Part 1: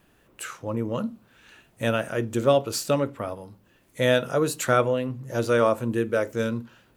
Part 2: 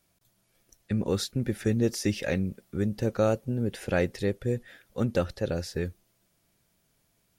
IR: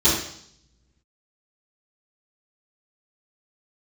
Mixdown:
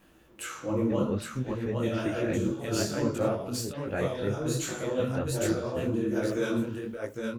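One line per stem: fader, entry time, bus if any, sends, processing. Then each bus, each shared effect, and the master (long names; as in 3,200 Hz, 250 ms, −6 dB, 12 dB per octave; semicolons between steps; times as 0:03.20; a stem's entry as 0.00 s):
+1.5 dB, 0.00 s, send −23 dB, echo send −6.5 dB, compressor whose output falls as the input rises −25 dBFS, ratio −0.5; automatic ducking −12 dB, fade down 1.75 s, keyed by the second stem
−2.0 dB, 0.00 s, no send, no echo send, low-pass filter 2,800 Hz 12 dB per octave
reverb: on, RT60 0.65 s, pre-delay 3 ms
echo: single-tap delay 812 ms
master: micro pitch shift up and down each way 44 cents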